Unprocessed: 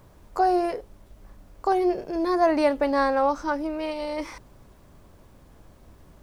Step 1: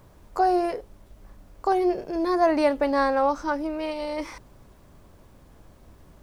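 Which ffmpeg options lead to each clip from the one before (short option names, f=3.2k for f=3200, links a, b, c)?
-af anull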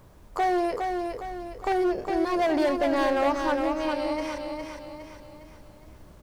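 -af "volume=20.5dB,asoftclip=hard,volume=-20.5dB,aecho=1:1:410|820|1230|1640|2050|2460:0.562|0.253|0.114|0.0512|0.0231|0.0104"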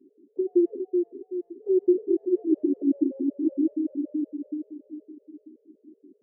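-af "asuperpass=centerf=320:order=8:qfactor=1.8,afftfilt=real='re*gt(sin(2*PI*5.3*pts/sr)*(1-2*mod(floor(b*sr/1024/420),2)),0)':imag='im*gt(sin(2*PI*5.3*pts/sr)*(1-2*mod(floor(b*sr/1024/420),2)),0)':win_size=1024:overlap=0.75,volume=8.5dB"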